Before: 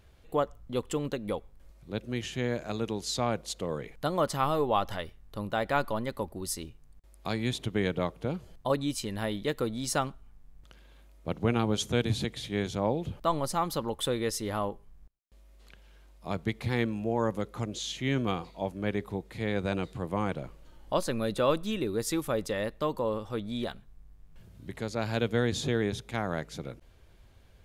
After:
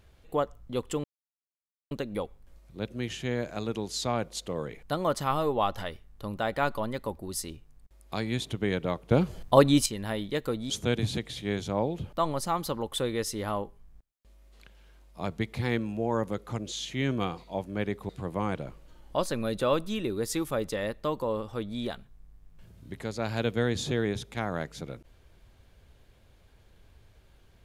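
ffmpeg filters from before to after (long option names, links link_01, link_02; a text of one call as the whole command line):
ffmpeg -i in.wav -filter_complex "[0:a]asplit=6[link_01][link_02][link_03][link_04][link_05][link_06];[link_01]atrim=end=1.04,asetpts=PTS-STARTPTS,afade=type=out:start_time=1.036:duration=0.004:curve=hsin,apad=pad_dur=0.87[link_07];[link_02]atrim=start=1.04:end=8.242,asetpts=PTS-STARTPTS,afade=type=in:duration=0.004:curve=hsin[link_08];[link_03]atrim=start=8.238:end=8.992,asetpts=PTS-STARTPTS,volume=9.5dB[link_09];[link_04]atrim=start=8.988:end=9.832[link_10];[link_05]atrim=start=11.768:end=19.162[link_11];[link_06]atrim=start=19.858[link_12];[link_07][link_08]concat=n=2:v=0:a=1[link_13];[link_13][link_09]acrossfade=duration=0.004:curve1=hsin:curve2=hsin[link_14];[link_14][link_10]acrossfade=duration=0.004:curve1=hsin:curve2=hsin[link_15];[link_15][link_11]acrossfade=duration=0.004:curve1=hsin:curve2=hsin[link_16];[link_16][link_12]acrossfade=duration=0.004:curve1=hsin:curve2=hsin" out.wav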